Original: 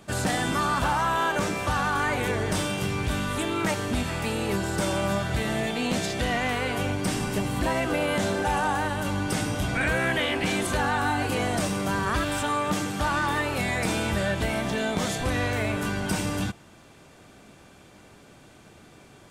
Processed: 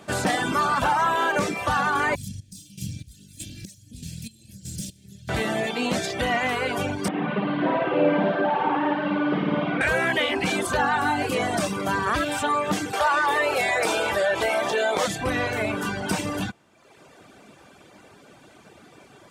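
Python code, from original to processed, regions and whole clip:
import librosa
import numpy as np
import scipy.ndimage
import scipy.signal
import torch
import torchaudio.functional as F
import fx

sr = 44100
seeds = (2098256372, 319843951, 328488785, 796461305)

y = fx.chain(x, sr, fx.lower_of_two(delay_ms=1.2),
    fx.chopper(hz=1.6, depth_pct=65, duty_pct=40),
    fx.cheby1_bandstop(low_hz=160.0, high_hz=5800.0, order=2), at=(2.15, 5.29))
y = fx.chain(y, sr, fx.delta_mod(bps=32000, step_db=-43.0),
    fx.cheby1_bandpass(low_hz=170.0, high_hz=3200.0, order=3),
    fx.room_flutter(wall_m=9.3, rt60_s=1.3), at=(7.08, 9.81))
y = fx.chain(y, sr, fx.low_shelf_res(hz=320.0, db=-11.0, q=1.5),
    fx.env_flatten(amount_pct=50), at=(12.93, 15.07))
y = fx.tilt_eq(y, sr, slope=-1.5)
y = fx.dereverb_blind(y, sr, rt60_s=0.97)
y = fx.highpass(y, sr, hz=430.0, slope=6)
y = y * 10.0 ** (6.0 / 20.0)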